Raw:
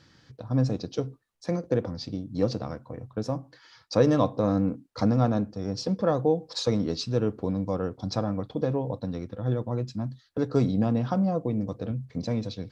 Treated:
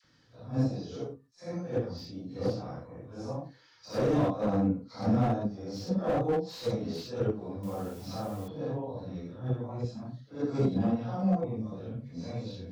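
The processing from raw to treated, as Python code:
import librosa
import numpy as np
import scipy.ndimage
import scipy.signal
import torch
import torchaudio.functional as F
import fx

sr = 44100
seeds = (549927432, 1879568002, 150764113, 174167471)

p1 = fx.phase_scramble(x, sr, seeds[0], window_ms=200)
p2 = fx.dynamic_eq(p1, sr, hz=750.0, q=5.2, threshold_db=-47.0, ratio=4.0, max_db=5)
p3 = fx.level_steps(p2, sr, step_db=24)
p4 = p2 + F.gain(torch.from_numpy(p3), -1.0).numpy()
p5 = fx.dispersion(p4, sr, late='lows', ms=45.0, hz=840.0)
p6 = fx.quant_dither(p5, sr, seeds[1], bits=8, dither='triangular', at=(7.63, 8.48))
p7 = fx.slew_limit(p6, sr, full_power_hz=80.0)
y = F.gain(torch.from_numpy(p7), -8.0).numpy()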